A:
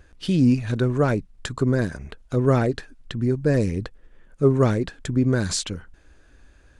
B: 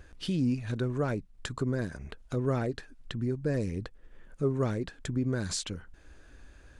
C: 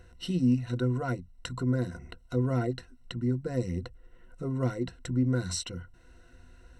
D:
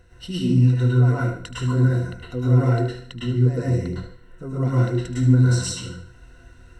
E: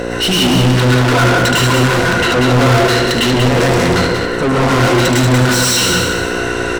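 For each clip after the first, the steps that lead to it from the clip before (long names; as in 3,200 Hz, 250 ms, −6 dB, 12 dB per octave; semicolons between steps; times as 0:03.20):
downward compressor 1.5 to 1, threshold −44 dBFS, peak gain reduction 11.5 dB
EQ curve with evenly spaced ripples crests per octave 2, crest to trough 17 dB; level −3.5 dB
delay with a high-pass on its return 75 ms, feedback 38%, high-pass 1,400 Hz, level −11 dB; dense smooth reverb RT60 0.56 s, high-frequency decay 0.7×, pre-delay 95 ms, DRR −6.5 dB
hum with harmonics 60 Hz, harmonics 9, −42 dBFS −4 dB per octave; mid-hump overdrive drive 43 dB, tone 6,200 Hz, clips at −6 dBFS; repeating echo 186 ms, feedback 33%, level −5 dB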